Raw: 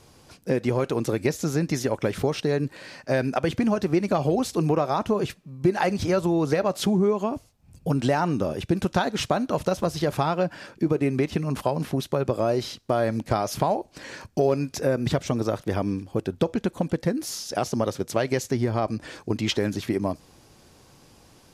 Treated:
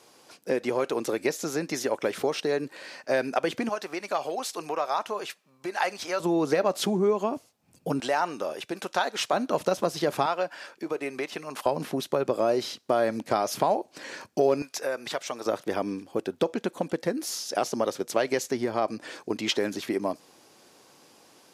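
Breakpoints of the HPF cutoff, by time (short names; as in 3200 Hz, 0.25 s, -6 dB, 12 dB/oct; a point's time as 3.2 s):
350 Hz
from 3.69 s 730 Hz
from 6.2 s 260 Hz
from 8 s 560 Hz
from 9.33 s 260 Hz
from 10.26 s 580 Hz
from 11.66 s 260 Hz
from 14.62 s 700 Hz
from 15.46 s 300 Hz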